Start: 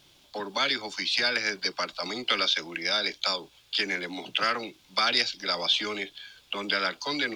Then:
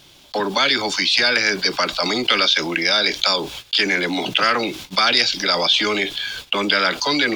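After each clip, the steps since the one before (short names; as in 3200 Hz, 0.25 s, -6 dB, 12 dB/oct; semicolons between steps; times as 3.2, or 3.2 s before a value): gate -53 dBFS, range -31 dB; fast leveller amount 50%; gain +6.5 dB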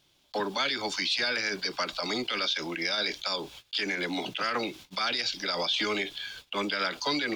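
limiter -10.5 dBFS, peak gain reduction 8.5 dB; upward expander 1.5:1, over -40 dBFS; gain -7.5 dB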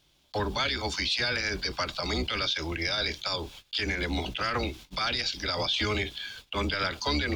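octaver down 2 oct, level +3 dB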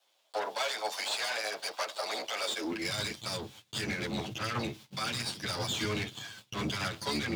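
minimum comb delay 9.2 ms; high-pass sweep 620 Hz -> 130 Hz, 2.38–2.95; gain -4 dB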